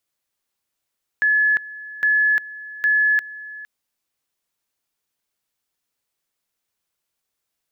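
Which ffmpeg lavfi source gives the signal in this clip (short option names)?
-f lavfi -i "aevalsrc='pow(10,(-14-18.5*gte(mod(t,0.81),0.35))/20)*sin(2*PI*1710*t)':d=2.43:s=44100"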